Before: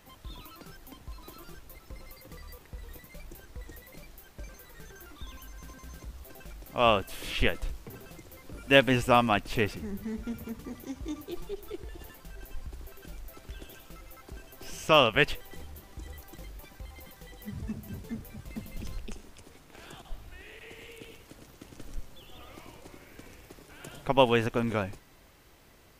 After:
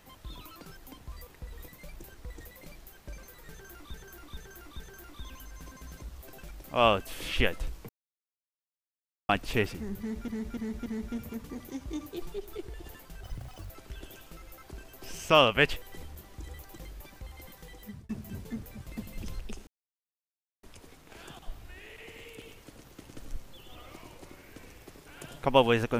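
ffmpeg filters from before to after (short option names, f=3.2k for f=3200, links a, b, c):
-filter_complex "[0:a]asplit=14[a][b][c][d][e][f][g][h][i][j][k][l][m][n];[a]atrim=end=1.122[o];[b]atrim=start=2.428:end=5.252[p];[c]atrim=start=4.818:end=5.252[q];[d]atrim=start=4.818:end=5.252[r];[e]atrim=start=4.818:end=7.91,asetpts=PTS-STARTPTS,afade=t=out:st=3.088:d=0.004:c=hsin[s];[f]atrim=start=7.91:end=9.31,asetpts=PTS-STARTPTS,volume=0[t];[g]atrim=start=9.31:end=10.302,asetpts=PTS-STARTPTS,afade=t=in:d=0.004:c=hsin[u];[h]atrim=start=10.008:end=10.302[v];[i]atrim=start=10.008:end=10.302[w];[j]atrim=start=10.008:end=12.384[x];[k]atrim=start=12.38:end=13.29,asetpts=PTS-STARTPTS,asetrate=85113,aresample=44100,atrim=end_sample=20793,asetpts=PTS-STARTPTS[y];[l]atrim=start=13.286:end=17.68,asetpts=PTS-STARTPTS,afade=t=out:st=3.984:d=0.41:c=qsin[z];[m]atrim=start=17.68:end=19.26,asetpts=PTS-STARTPTS,afade=t=in:d=0.004:c=hsin,afade=t=out:st=1.576:d=0.004:c=hsin,apad=pad_dur=0.96[aa];[n]atrim=start=19.26,asetpts=PTS-STARTPTS,afade=t=in:d=0.004:c=hsin[ab];[o][p]acrossfade=d=0.004:c1=hsin:c2=hsin[ac];[ac][q]acrossfade=d=0.004:c1=hsin:c2=hsin[ad];[ad][r]acrossfade=d=0.004:c1=hsin:c2=hsin[ae];[s][t][u]concat=n=3:v=0:a=1[af];[ae][af]acrossfade=d=0.004:c1=hsin:c2=hsin[ag];[ag][v]acrossfade=d=0.004:c1=hsin:c2=hsin[ah];[ah][w]acrossfade=d=0.004:c1=hsin:c2=hsin[ai];[ai][x]acrossfade=d=0.004:c1=hsin:c2=hsin[aj];[aj][y]acrossfade=d=0.004:c1=hsin:c2=hsin[ak];[z][aa][ab]concat=n=3:v=0:a=1[al];[ak][al]acrossfade=d=0.004:c1=hsin:c2=hsin"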